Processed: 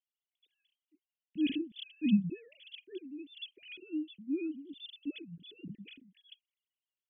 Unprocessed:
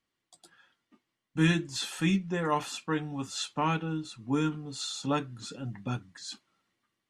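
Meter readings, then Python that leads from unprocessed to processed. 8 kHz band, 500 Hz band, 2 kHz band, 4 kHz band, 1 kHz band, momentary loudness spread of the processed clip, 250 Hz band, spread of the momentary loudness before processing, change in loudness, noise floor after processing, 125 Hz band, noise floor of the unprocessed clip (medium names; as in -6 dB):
under -40 dB, -11.0 dB, -14.0 dB, -9.0 dB, under -40 dB, 19 LU, -3.0 dB, 12 LU, -5.5 dB, under -85 dBFS, -12.5 dB, -85 dBFS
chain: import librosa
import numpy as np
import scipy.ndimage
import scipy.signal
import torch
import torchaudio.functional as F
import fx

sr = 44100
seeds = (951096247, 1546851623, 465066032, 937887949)

y = fx.sine_speech(x, sr)
y = scipy.signal.sosfilt(scipy.signal.ellip(3, 1.0, 70, [320.0, 2900.0], 'bandstop', fs=sr, output='sos'), y)
y = fx.spec_erase(y, sr, start_s=2.1, length_s=0.25, low_hz=510.0, high_hz=2500.0)
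y = y * 10.0 ** (-4.0 / 20.0)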